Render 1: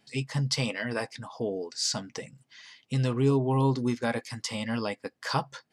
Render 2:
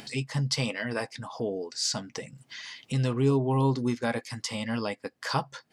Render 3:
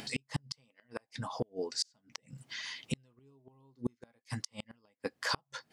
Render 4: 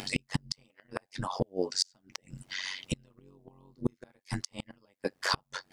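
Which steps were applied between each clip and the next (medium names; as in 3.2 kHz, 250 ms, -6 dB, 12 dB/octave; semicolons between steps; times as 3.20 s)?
upward compressor, threshold -32 dBFS
inverted gate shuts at -20 dBFS, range -39 dB
AM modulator 93 Hz, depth 80%; in parallel at -4 dB: overload inside the chain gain 24 dB; on the sum: trim +4 dB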